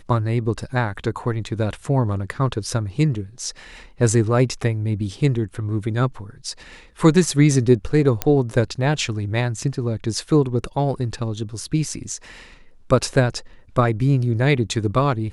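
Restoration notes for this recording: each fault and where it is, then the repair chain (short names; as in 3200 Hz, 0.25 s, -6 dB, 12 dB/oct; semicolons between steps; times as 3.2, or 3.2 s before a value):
8.22 pop -4 dBFS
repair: de-click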